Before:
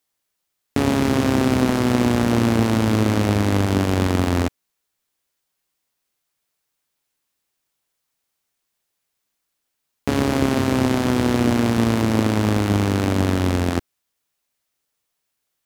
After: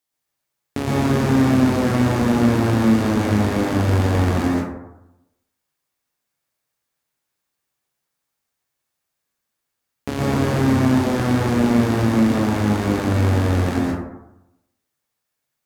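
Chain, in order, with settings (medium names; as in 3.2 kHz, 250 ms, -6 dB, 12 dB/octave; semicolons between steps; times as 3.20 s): plate-style reverb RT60 0.89 s, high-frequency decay 0.35×, pre-delay 105 ms, DRR -4 dB; trim -5.5 dB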